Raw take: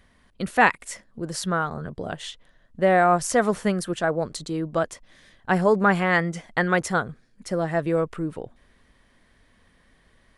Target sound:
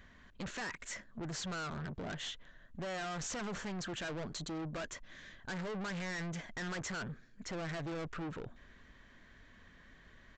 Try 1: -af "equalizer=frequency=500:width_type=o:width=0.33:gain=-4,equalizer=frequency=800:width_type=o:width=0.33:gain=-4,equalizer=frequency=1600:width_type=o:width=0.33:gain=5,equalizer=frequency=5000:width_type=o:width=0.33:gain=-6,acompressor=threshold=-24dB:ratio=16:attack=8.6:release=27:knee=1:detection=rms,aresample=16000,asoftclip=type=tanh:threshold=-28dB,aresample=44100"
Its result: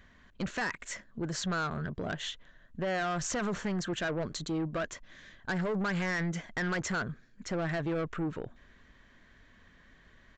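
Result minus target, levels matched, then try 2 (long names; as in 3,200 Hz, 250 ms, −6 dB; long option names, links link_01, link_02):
soft clipping: distortion −6 dB
-af "equalizer=frequency=500:width_type=o:width=0.33:gain=-4,equalizer=frequency=800:width_type=o:width=0.33:gain=-4,equalizer=frequency=1600:width_type=o:width=0.33:gain=5,equalizer=frequency=5000:width_type=o:width=0.33:gain=-6,acompressor=threshold=-24dB:ratio=16:attack=8.6:release=27:knee=1:detection=rms,aresample=16000,asoftclip=type=tanh:threshold=-38.5dB,aresample=44100"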